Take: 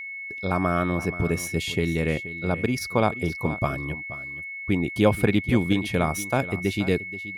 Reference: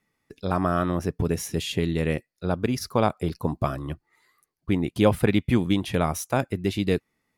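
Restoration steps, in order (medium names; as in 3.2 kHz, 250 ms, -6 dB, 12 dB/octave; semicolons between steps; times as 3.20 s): band-stop 2.2 kHz, Q 30; inverse comb 478 ms -15 dB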